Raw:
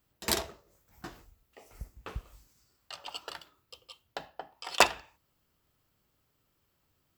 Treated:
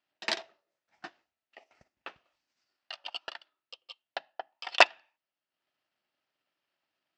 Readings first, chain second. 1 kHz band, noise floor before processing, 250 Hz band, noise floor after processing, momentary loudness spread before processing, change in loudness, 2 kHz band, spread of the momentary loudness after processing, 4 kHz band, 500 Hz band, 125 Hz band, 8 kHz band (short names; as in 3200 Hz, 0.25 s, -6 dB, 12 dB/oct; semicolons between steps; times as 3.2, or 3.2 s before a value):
+1.0 dB, -76 dBFS, -7.5 dB, under -85 dBFS, 24 LU, +2.5 dB, +4.0 dB, 26 LU, +1.5 dB, +1.0 dB, under -20 dB, -10.0 dB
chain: speaker cabinet 390–5200 Hz, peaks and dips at 450 Hz -9 dB, 660 Hz +4 dB, 1100 Hz -4 dB, 1800 Hz +4 dB, 2700 Hz +4 dB; transient shaper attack +8 dB, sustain -8 dB; gain -5.5 dB